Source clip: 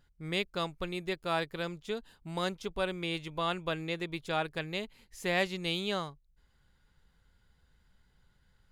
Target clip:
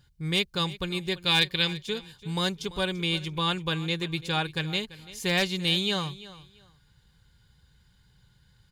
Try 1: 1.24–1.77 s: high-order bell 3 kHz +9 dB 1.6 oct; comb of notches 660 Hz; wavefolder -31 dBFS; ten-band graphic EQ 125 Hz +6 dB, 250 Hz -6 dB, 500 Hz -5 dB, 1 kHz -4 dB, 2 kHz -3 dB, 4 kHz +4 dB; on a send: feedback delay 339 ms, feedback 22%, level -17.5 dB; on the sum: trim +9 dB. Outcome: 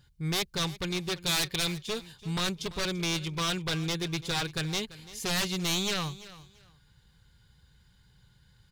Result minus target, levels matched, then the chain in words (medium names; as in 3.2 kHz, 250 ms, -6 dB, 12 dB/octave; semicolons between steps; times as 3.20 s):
wavefolder: distortion +24 dB
1.24–1.77 s: high-order bell 3 kHz +9 dB 1.6 oct; comb of notches 660 Hz; wavefolder -20.5 dBFS; ten-band graphic EQ 125 Hz +6 dB, 250 Hz -6 dB, 500 Hz -5 dB, 1 kHz -4 dB, 2 kHz -3 dB, 4 kHz +4 dB; on a send: feedback delay 339 ms, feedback 22%, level -17.5 dB; on the sum: trim +9 dB